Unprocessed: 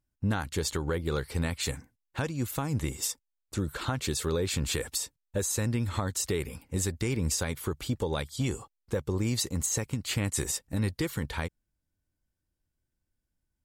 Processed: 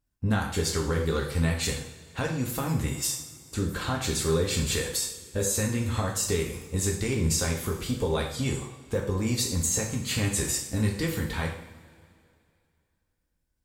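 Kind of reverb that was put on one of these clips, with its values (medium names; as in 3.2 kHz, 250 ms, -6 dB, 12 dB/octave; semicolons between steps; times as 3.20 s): two-slope reverb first 0.58 s, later 2.5 s, from -18 dB, DRR -1 dB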